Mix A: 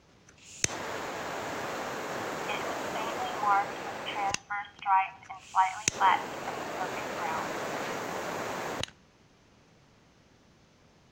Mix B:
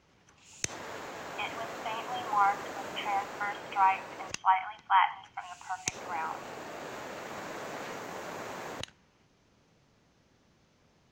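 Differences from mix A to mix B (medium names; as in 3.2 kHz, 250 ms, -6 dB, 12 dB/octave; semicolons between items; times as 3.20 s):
speech: entry -1.10 s; background -5.5 dB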